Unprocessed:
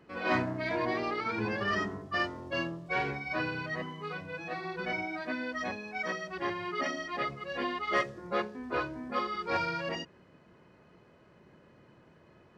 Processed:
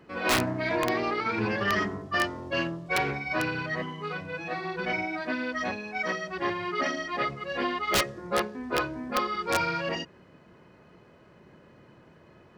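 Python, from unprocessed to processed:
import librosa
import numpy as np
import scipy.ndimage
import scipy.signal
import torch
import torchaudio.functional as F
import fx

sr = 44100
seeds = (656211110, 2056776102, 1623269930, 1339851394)

y = (np.mod(10.0 ** (20.5 / 20.0) * x + 1.0, 2.0) - 1.0) / 10.0 ** (20.5 / 20.0)
y = fx.doppler_dist(y, sr, depth_ms=0.15)
y = y * librosa.db_to_amplitude(4.5)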